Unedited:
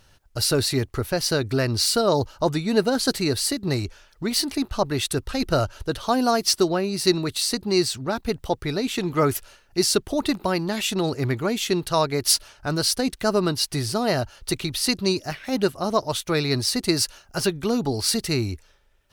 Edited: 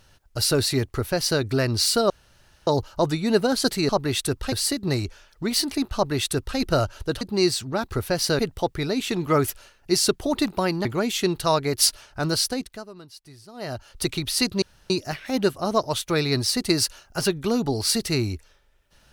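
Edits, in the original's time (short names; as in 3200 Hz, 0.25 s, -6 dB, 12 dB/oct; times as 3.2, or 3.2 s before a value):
0.94–1.41 copy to 8.26
2.1 insert room tone 0.57 s
4.75–5.38 copy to 3.32
6.01–7.55 cut
10.72–11.32 cut
12.82–14.5 dip -21.5 dB, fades 0.50 s
15.09 insert room tone 0.28 s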